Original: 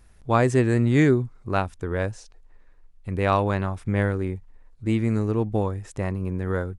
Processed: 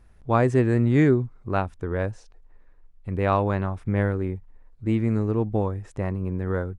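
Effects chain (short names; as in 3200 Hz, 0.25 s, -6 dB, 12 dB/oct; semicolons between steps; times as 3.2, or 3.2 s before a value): high shelf 3100 Hz -11 dB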